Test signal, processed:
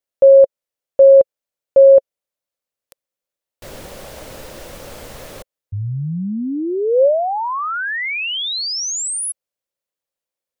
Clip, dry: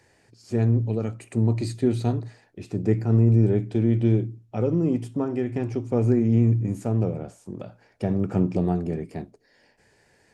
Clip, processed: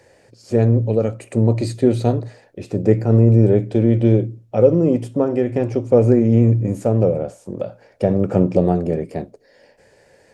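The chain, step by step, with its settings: peaking EQ 540 Hz +12.5 dB 0.49 oct; trim +5 dB

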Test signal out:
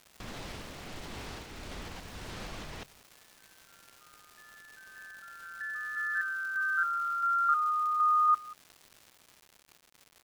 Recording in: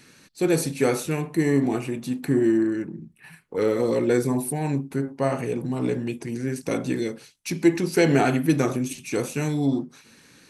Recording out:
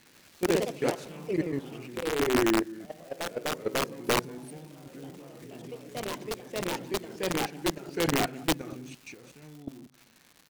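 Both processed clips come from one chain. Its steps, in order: low-pass 4.9 kHz 12 dB/octave; de-hum 134 Hz, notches 3; level held to a coarse grid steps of 20 dB; random-step tremolo, depth 80%; on a send: delay 186 ms -21.5 dB; on the sum: crackle 240 per s -40 dBFS; integer overflow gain 15.5 dB; ever faster or slower copies 104 ms, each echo +2 st, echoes 3; trim -2 dB

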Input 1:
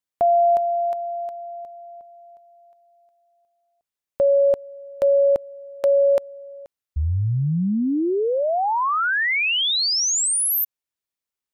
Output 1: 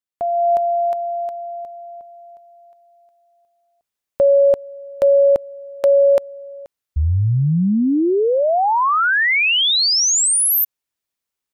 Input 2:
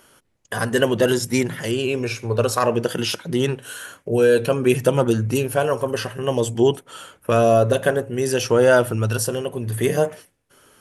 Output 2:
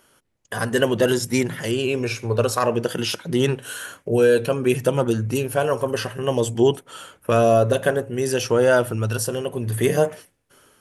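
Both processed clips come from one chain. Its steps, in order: level rider gain up to 10 dB; trim -5 dB

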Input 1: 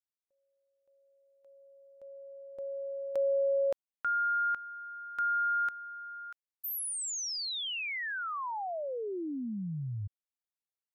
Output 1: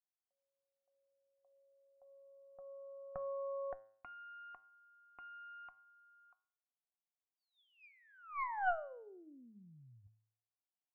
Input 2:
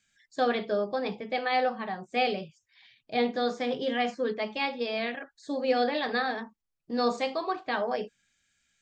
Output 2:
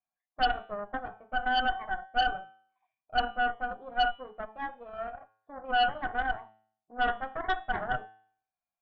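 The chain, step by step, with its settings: cascade formant filter a; Chebyshev shaper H 6 -9 dB, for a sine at -21.5 dBFS; de-hum 109.3 Hz, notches 37; trim +4.5 dB

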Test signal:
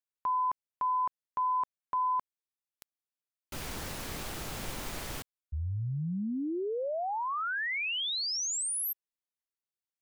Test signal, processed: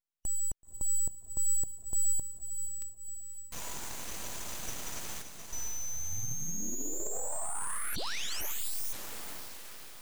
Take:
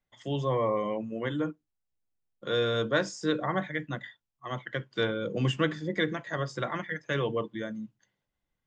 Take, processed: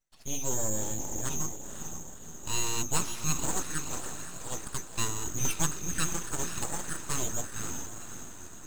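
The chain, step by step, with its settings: four frequency bands reordered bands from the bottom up 3412; echo that smears into a reverb 515 ms, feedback 54%, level -8 dB; full-wave rectifier

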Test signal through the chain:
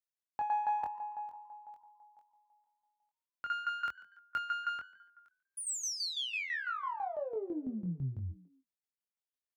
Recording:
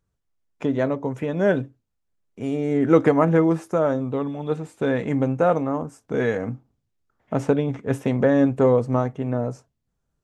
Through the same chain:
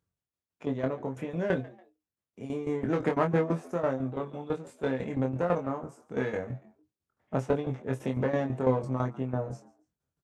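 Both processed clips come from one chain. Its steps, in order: single-diode clipper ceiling -18.5 dBFS; high-pass 57 Hz 24 dB/octave; tremolo saw down 6 Hz, depth 80%; doubling 23 ms -4.5 dB; frequency-shifting echo 142 ms, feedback 33%, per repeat +90 Hz, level -21 dB; trim -4.5 dB

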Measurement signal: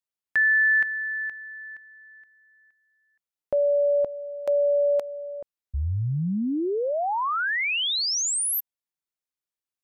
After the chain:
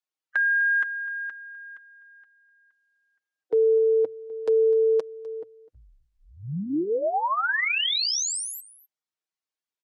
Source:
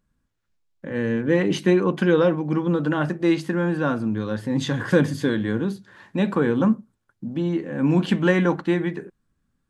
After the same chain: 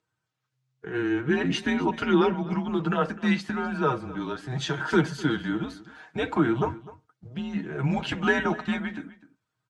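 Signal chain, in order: coarse spectral quantiser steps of 15 dB; on a send: delay 253 ms -18.5 dB; on the sum: frequency shift -130 Hz; band-pass 220–7100 Hz; comb 6.4 ms, depth 49%

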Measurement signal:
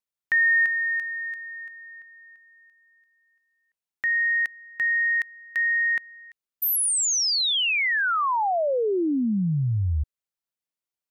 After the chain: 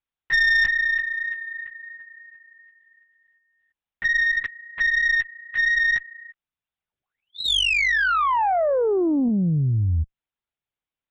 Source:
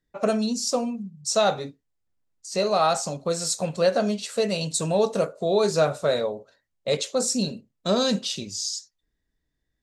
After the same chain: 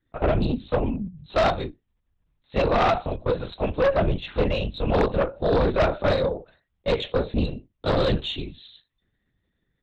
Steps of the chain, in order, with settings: LPC vocoder at 8 kHz whisper; Chebyshev shaper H 4 -13 dB, 5 -9 dB, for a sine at -7.5 dBFS; loudspeaker Doppler distortion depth 0.14 ms; trim -5 dB

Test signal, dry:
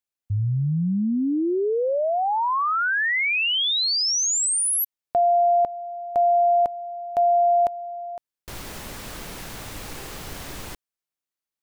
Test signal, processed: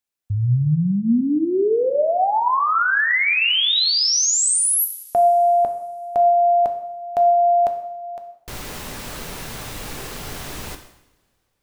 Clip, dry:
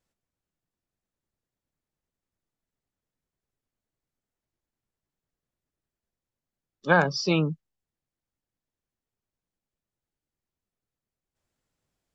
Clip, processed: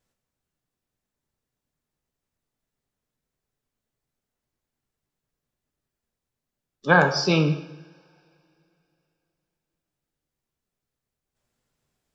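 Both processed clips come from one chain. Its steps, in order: two-slope reverb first 0.74 s, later 3.1 s, from -26 dB, DRR 5.5 dB; trim +3 dB

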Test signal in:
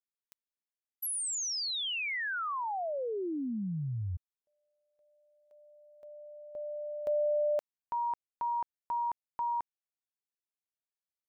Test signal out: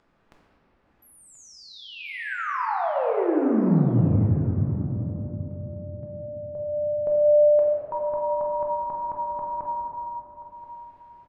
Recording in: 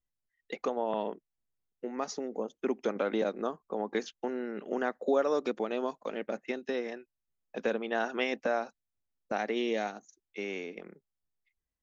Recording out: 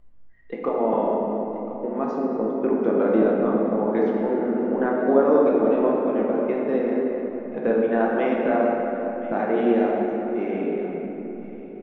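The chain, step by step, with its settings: low-pass 1.4 kHz 12 dB/octave; bass shelf 240 Hz +8 dB; upward compressor, threshold -50 dBFS; feedback delay 1032 ms, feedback 16%, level -16.5 dB; simulated room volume 220 m³, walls hard, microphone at 0.76 m; trim +4 dB

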